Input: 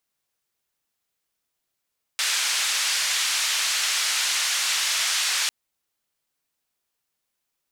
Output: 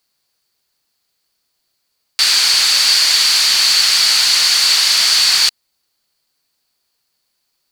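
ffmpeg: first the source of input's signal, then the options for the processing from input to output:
-f lavfi -i "anoisesrc=color=white:duration=3.3:sample_rate=44100:seed=1,highpass=frequency=1500,lowpass=frequency=6600,volume=-13dB"
-filter_complex "[0:a]asplit=2[link_01][link_02];[link_02]aeval=exprs='0.282*sin(PI/2*2.51*val(0)/0.282)':channel_layout=same,volume=-7.5dB[link_03];[link_01][link_03]amix=inputs=2:normalize=0,equalizer=frequency=4500:width=5.7:gain=14.5"

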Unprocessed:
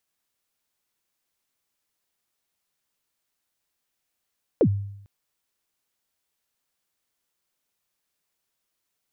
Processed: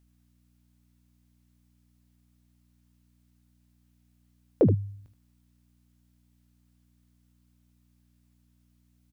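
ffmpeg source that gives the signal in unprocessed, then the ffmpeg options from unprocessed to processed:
-f lavfi -i "aevalsrc='0.237*pow(10,-3*t/0.77)*sin(2*PI*(560*0.071/log(100/560)*(exp(log(100/560)*min(t,0.071)/0.071)-1)+100*max(t-0.071,0)))':duration=0.45:sample_rate=44100"
-filter_complex "[0:a]aeval=exprs='val(0)+0.000708*(sin(2*PI*60*n/s)+sin(2*PI*2*60*n/s)/2+sin(2*PI*3*60*n/s)/3+sin(2*PI*4*60*n/s)/4+sin(2*PI*5*60*n/s)/5)':channel_layout=same,asplit=2[link_01][link_02];[link_02]aecho=0:1:21|76:0.251|0.282[link_03];[link_01][link_03]amix=inputs=2:normalize=0"

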